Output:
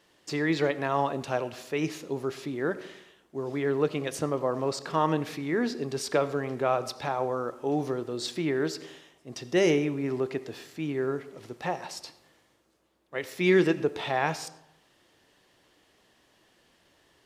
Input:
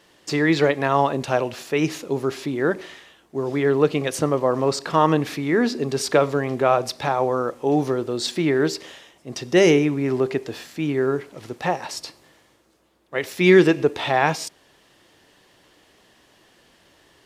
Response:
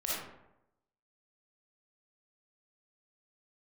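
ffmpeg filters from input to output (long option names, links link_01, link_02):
-filter_complex "[0:a]asplit=2[link_01][link_02];[1:a]atrim=start_sample=2205,lowpass=8500,adelay=25[link_03];[link_02][link_03]afir=irnorm=-1:irlink=0,volume=-20.5dB[link_04];[link_01][link_04]amix=inputs=2:normalize=0,volume=-8dB"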